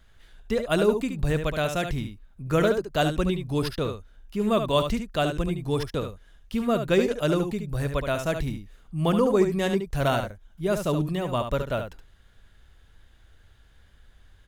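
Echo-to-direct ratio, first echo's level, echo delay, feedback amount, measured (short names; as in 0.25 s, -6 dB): -7.5 dB, -7.5 dB, 72 ms, no steady repeat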